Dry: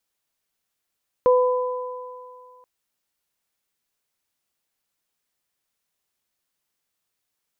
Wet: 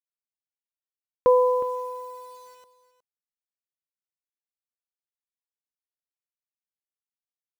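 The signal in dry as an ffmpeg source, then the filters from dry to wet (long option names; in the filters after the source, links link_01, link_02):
-f lavfi -i "aevalsrc='0.251*pow(10,-3*t/1.99)*sin(2*PI*501*t)+0.1*pow(10,-3*t/2.69)*sin(2*PI*1002*t)':duration=1.38:sample_rate=44100"
-af "acrusher=bits=8:mix=0:aa=0.000001,aecho=1:1:364:0.168"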